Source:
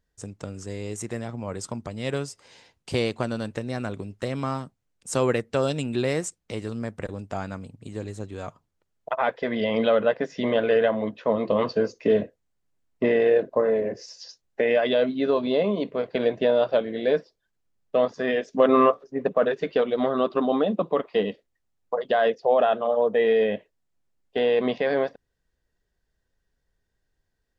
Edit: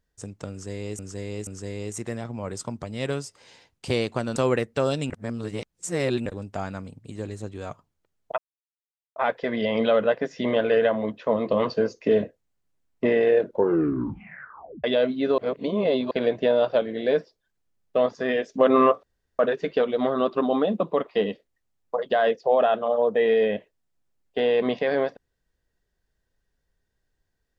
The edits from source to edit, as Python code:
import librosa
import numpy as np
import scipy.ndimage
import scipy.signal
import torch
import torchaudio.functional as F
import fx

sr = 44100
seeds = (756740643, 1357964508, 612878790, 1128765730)

y = fx.edit(x, sr, fx.repeat(start_s=0.51, length_s=0.48, count=3),
    fx.cut(start_s=3.4, length_s=1.73),
    fx.reverse_span(start_s=5.87, length_s=1.16),
    fx.insert_silence(at_s=9.15, length_s=0.78),
    fx.tape_stop(start_s=13.39, length_s=1.44),
    fx.reverse_span(start_s=15.37, length_s=0.73),
    fx.room_tone_fill(start_s=19.02, length_s=0.36), tone=tone)